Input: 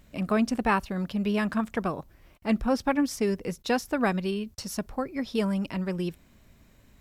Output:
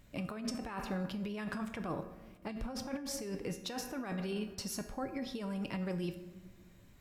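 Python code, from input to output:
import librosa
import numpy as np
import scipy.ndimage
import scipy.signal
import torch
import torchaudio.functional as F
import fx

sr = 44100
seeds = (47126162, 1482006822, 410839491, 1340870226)

y = fx.room_shoebox(x, sr, seeds[0], volume_m3=1100.0, walls='mixed', distance_m=0.35)
y = fx.over_compress(y, sr, threshold_db=-30.0, ratio=-1.0)
y = fx.comb_fb(y, sr, f0_hz=110.0, decay_s=0.5, harmonics='odd', damping=0.0, mix_pct=70)
y = y * 10.0 ** (1.5 / 20.0)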